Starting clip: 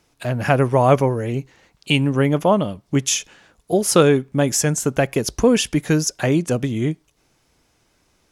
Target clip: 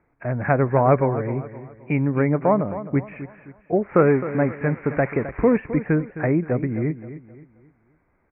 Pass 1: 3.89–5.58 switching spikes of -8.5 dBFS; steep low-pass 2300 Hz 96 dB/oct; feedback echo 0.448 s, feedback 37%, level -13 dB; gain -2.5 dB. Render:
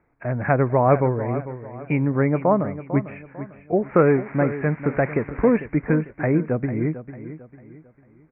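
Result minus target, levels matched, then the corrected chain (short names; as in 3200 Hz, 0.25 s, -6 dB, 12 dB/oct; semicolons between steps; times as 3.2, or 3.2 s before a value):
echo 0.186 s late
3.89–5.58 switching spikes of -8.5 dBFS; steep low-pass 2300 Hz 96 dB/oct; feedback echo 0.262 s, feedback 37%, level -13 dB; gain -2.5 dB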